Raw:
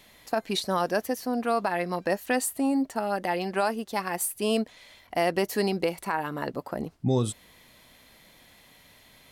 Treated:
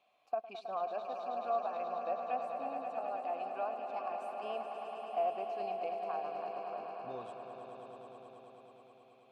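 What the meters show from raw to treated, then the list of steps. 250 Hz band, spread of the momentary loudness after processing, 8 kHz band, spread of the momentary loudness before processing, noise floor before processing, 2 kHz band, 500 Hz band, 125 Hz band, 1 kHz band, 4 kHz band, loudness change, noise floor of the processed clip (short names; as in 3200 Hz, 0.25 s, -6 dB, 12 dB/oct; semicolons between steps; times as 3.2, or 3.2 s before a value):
-24.5 dB, 15 LU, under -35 dB, 7 LU, -57 dBFS, -19.0 dB, -9.0 dB, under -25 dB, -5.5 dB, -21.0 dB, -10.5 dB, -63 dBFS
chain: vowel filter a; treble ducked by the level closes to 2300 Hz, closed at -29 dBFS; swelling echo 0.107 s, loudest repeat 5, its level -9.5 dB; gain -4 dB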